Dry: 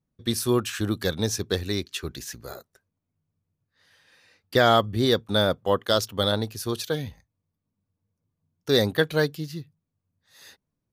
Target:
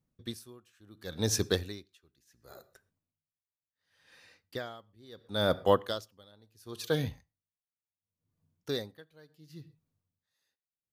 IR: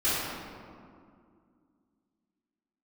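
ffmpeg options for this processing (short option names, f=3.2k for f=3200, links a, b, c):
-filter_complex "[0:a]asplit=2[a][b];[1:a]atrim=start_sample=2205,atrim=end_sample=6174[c];[b][c]afir=irnorm=-1:irlink=0,volume=-30dB[d];[a][d]amix=inputs=2:normalize=0,aeval=exprs='val(0)*pow(10,-35*(0.5-0.5*cos(2*PI*0.71*n/s))/20)':c=same"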